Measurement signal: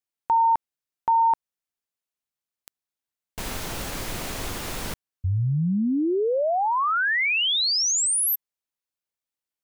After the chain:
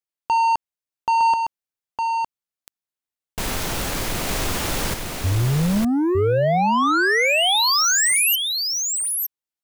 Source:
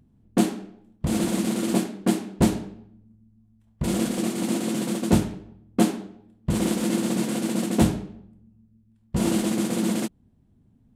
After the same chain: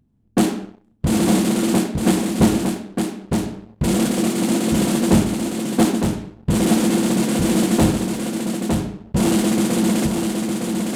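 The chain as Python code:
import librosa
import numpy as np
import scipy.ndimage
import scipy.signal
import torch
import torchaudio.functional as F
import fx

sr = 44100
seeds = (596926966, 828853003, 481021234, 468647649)

y = fx.leveller(x, sr, passes=2)
y = y + 10.0 ** (-4.5 / 20.0) * np.pad(y, (int(909 * sr / 1000.0), 0))[:len(y)]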